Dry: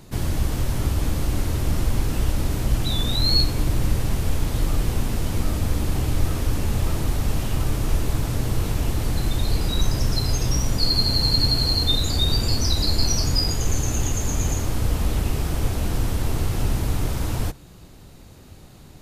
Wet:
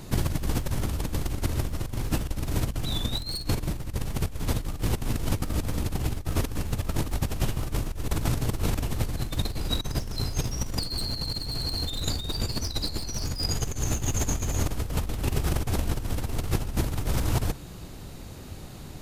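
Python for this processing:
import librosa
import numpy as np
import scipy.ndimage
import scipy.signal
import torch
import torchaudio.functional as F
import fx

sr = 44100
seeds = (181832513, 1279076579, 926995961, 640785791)

y = np.minimum(x, 2.0 * 10.0 ** (-15.5 / 20.0) - x)
y = fx.over_compress(y, sr, threshold_db=-25.0, ratio=-0.5)
y = y * librosa.db_to_amplitude(-1.0)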